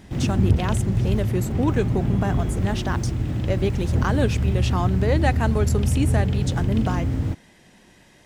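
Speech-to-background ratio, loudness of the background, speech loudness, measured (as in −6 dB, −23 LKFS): −3.5 dB, −23.5 LKFS, −27.0 LKFS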